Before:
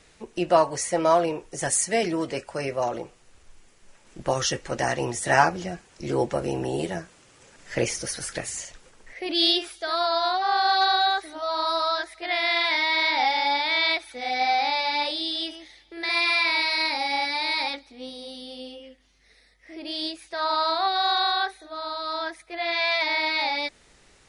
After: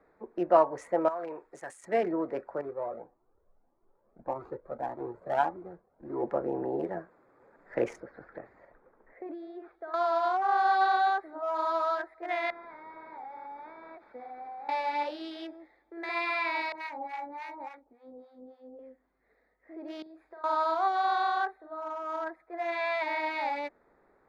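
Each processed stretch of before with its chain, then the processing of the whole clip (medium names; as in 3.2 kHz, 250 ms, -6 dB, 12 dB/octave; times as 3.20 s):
1.08–1.84 s: tilt shelf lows -8.5 dB, about 1.3 kHz + compression, threshold -27 dBFS + tape noise reduction on one side only decoder only
2.61–6.23 s: median filter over 25 samples + treble shelf 4.5 kHz +6 dB + Shepard-style flanger rising 1.7 Hz
8.00–9.94 s: median filter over 3 samples + compression 2.5:1, threshold -33 dBFS + distance through air 260 m
12.50–14.69 s: CVSD coder 32 kbps + compression 12:1, threshold -35 dBFS
16.72–18.79 s: median filter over 5 samples + distance through air 99 m + harmonic tremolo 3.5 Hz, depth 100%, crossover 850 Hz
20.02–20.44 s: compression, threshold -41 dBFS + flutter echo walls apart 7 m, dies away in 0.28 s
whole clip: local Wiener filter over 15 samples; three-band isolator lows -15 dB, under 240 Hz, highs -20 dB, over 2.1 kHz; trim -2 dB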